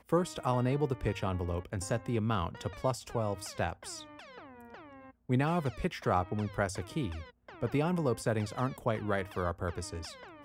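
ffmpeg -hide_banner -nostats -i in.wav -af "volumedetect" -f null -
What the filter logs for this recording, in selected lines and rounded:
mean_volume: -33.7 dB
max_volume: -15.4 dB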